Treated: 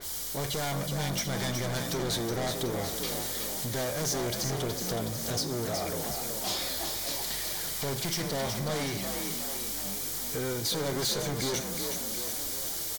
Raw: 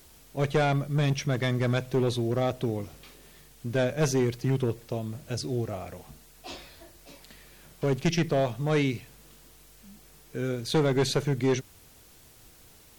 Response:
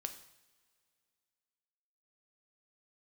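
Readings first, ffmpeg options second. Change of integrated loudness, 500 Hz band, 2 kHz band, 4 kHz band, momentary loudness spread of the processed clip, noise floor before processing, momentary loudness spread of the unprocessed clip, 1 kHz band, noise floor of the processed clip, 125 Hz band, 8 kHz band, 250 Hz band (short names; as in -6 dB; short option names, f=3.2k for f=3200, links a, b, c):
-3.0 dB, -5.0 dB, -1.5 dB, +5.5 dB, 2 LU, -55 dBFS, 15 LU, -1.0 dB, -35 dBFS, -6.5 dB, +10.0 dB, -5.5 dB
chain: -filter_complex "[0:a]asoftclip=type=tanh:threshold=-29dB,highshelf=f=4.6k:g=11.5,acompressor=threshold=-39dB:ratio=4,asplit=2[a][b];[b]highpass=320,lowpass=7.3k[c];[1:a]atrim=start_sample=2205[d];[c][d]afir=irnorm=-1:irlink=0,volume=0dB[e];[a][e]amix=inputs=2:normalize=0,aeval=exprs='0.0596*sin(PI/2*2.82*val(0)/0.0596)':c=same,bandreject=f=2.6k:w=6.1,asplit=9[f][g][h][i][j][k][l][m][n];[g]adelay=370,afreqshift=48,volume=-6dB[o];[h]adelay=740,afreqshift=96,volume=-10.7dB[p];[i]adelay=1110,afreqshift=144,volume=-15.5dB[q];[j]adelay=1480,afreqshift=192,volume=-20.2dB[r];[k]adelay=1850,afreqshift=240,volume=-24.9dB[s];[l]adelay=2220,afreqshift=288,volume=-29.7dB[t];[m]adelay=2590,afreqshift=336,volume=-34.4dB[u];[n]adelay=2960,afreqshift=384,volume=-39.1dB[v];[f][o][p][q][r][s][t][u][v]amix=inputs=9:normalize=0,adynamicequalizer=threshold=0.00794:dfrequency=3600:dqfactor=0.7:tfrequency=3600:tqfactor=0.7:attack=5:release=100:ratio=0.375:range=2:mode=boostabove:tftype=highshelf,volume=-5dB"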